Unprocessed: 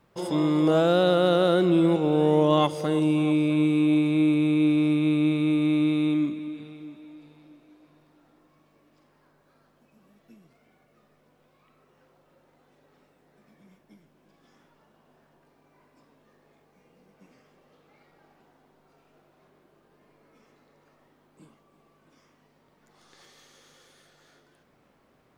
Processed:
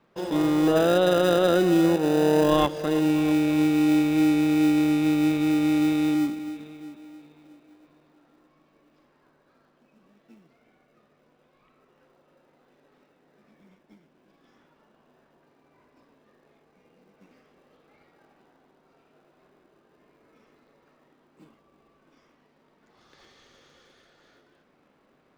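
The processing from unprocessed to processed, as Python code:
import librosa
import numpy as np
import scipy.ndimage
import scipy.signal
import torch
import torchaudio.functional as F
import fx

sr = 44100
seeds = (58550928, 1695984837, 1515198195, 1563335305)

p1 = fx.bandpass_edges(x, sr, low_hz=200.0, high_hz=4800.0)
p2 = fx.sample_hold(p1, sr, seeds[0], rate_hz=1100.0, jitter_pct=0)
y = p1 + (p2 * librosa.db_to_amplitude(-9.0))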